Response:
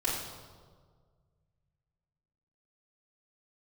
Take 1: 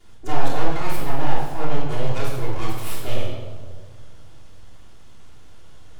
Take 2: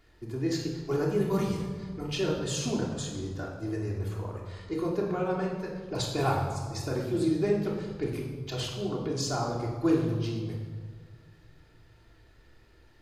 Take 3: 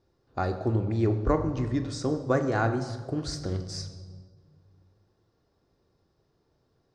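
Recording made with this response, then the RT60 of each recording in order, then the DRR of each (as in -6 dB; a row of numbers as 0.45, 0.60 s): 1; 1.7, 1.7, 1.8 s; -10.0, -3.0, 6.5 dB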